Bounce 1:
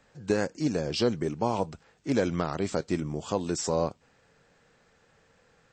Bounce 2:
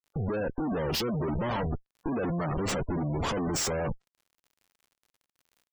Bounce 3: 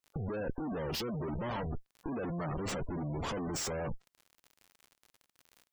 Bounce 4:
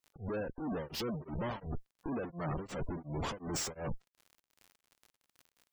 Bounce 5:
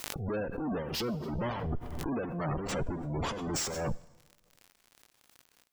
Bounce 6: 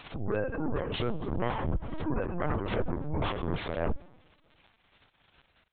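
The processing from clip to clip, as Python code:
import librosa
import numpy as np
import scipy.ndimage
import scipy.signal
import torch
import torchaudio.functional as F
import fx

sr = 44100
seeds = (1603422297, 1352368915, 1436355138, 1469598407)

y1 = fx.schmitt(x, sr, flips_db=-42.5)
y1 = fx.dmg_crackle(y1, sr, seeds[0], per_s=63.0, level_db=-53.0)
y1 = fx.spec_gate(y1, sr, threshold_db=-20, keep='strong')
y1 = y1 * 10.0 ** (2.0 / 20.0)
y2 = fx.over_compress(y1, sr, threshold_db=-36.0, ratio=-1.0)
y3 = y2 * np.abs(np.cos(np.pi * 2.8 * np.arange(len(y2)) / sr))
y3 = y3 * 10.0 ** (1.0 / 20.0)
y4 = fx.rev_plate(y3, sr, seeds[1], rt60_s=1.2, hf_ratio=1.0, predelay_ms=0, drr_db=18.0)
y4 = fx.pre_swell(y4, sr, db_per_s=33.0)
y4 = y4 * 10.0 ** (3.5 / 20.0)
y5 = np.clip(10.0 ** (27.5 / 20.0) * y4, -1.0, 1.0) / 10.0 ** (27.5 / 20.0)
y5 = fx.lpc_vocoder(y5, sr, seeds[2], excitation='pitch_kept', order=10)
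y5 = y5 * 10.0 ** (3.5 / 20.0)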